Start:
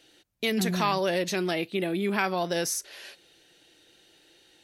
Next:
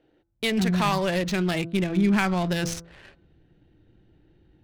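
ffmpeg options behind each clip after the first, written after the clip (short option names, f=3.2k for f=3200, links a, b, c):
-af "adynamicsmooth=sensitivity=7.5:basefreq=890,bandreject=f=168.3:t=h:w=4,bandreject=f=336.6:t=h:w=4,bandreject=f=504.9:t=h:w=4,bandreject=f=673.2:t=h:w=4,bandreject=f=841.5:t=h:w=4,bandreject=f=1.0098k:t=h:w=4,bandreject=f=1.1781k:t=h:w=4,bandreject=f=1.3464k:t=h:w=4,bandreject=f=1.5147k:t=h:w=4,asubboost=boost=11.5:cutoff=160,volume=2.5dB"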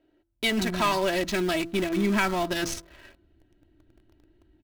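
-filter_complex "[0:a]aecho=1:1:3.1:0.71,asplit=2[a][b];[b]acrusher=bits=5:dc=4:mix=0:aa=0.000001,volume=-6dB[c];[a][c]amix=inputs=2:normalize=0,volume=-5dB"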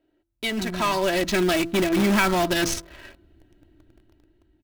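-filter_complex "[0:a]dynaudnorm=f=240:g=9:m=9.5dB,asplit=2[a][b];[b]aeval=exprs='(mod(3.98*val(0)+1,2)-1)/3.98':c=same,volume=-9dB[c];[a][c]amix=inputs=2:normalize=0,volume=-5dB"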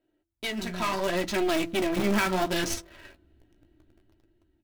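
-af "flanger=delay=8.3:depth=9.9:regen=-37:speed=0.7:shape=sinusoidal,aeval=exprs='0.266*(cos(1*acos(clip(val(0)/0.266,-1,1)))-cos(1*PI/2))+0.0299*(cos(6*acos(clip(val(0)/0.266,-1,1)))-cos(6*PI/2))':c=same,volume=-1.5dB"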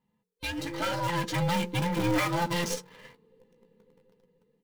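-af "afftfilt=real='real(if(between(b,1,1008),(2*floor((b-1)/24)+1)*24-b,b),0)':imag='imag(if(between(b,1,1008),(2*floor((b-1)/24)+1)*24-b,b),0)*if(between(b,1,1008),-1,1)':win_size=2048:overlap=0.75,volume=-2dB"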